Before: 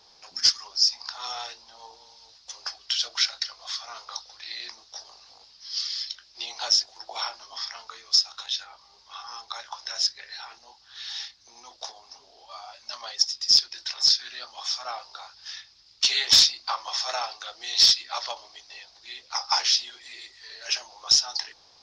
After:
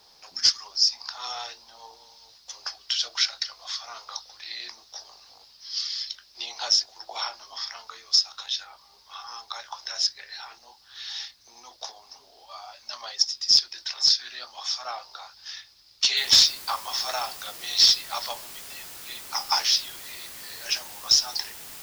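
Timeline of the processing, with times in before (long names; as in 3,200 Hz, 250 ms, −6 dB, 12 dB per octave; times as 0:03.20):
0:16.17: noise floor change −70 dB −42 dB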